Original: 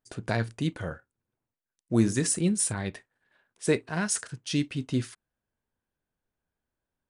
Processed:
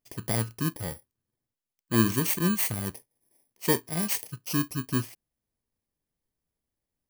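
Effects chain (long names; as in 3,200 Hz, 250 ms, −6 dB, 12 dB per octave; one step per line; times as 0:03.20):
samples in bit-reversed order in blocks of 32 samples
0:02.15–0:02.93: notch filter 5,100 Hz, Q 9.9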